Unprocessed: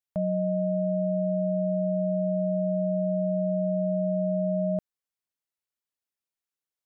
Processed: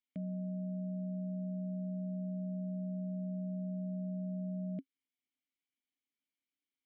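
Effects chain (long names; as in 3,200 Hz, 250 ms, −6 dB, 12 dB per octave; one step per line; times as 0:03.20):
brickwall limiter −26.5 dBFS, peak gain reduction 6.5 dB
formant filter i
level +12 dB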